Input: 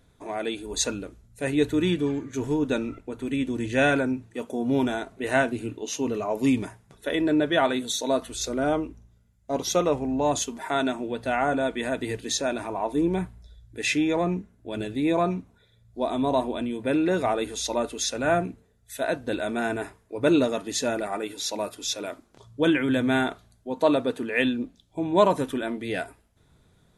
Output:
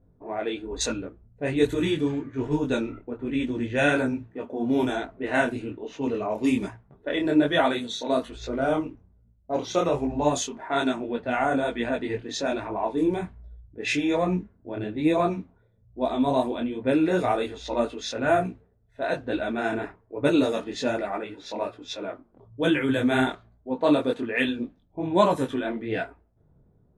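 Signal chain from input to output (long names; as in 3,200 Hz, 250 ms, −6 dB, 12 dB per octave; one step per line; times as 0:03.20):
low-pass that shuts in the quiet parts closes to 570 Hz, open at −19.5 dBFS
micro pitch shift up and down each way 41 cents
level +4 dB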